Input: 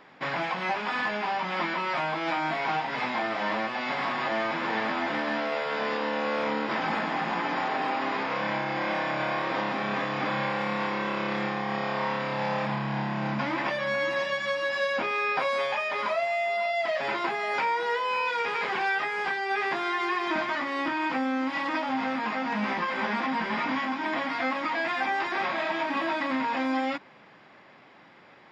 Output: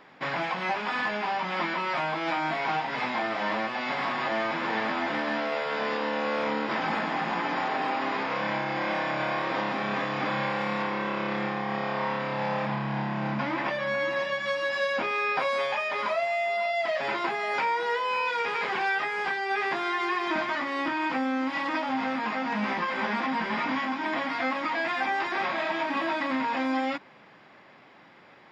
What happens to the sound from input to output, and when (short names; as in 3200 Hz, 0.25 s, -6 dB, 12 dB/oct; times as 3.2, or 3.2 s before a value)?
10.82–14.46 high shelf 5100 Hz -7 dB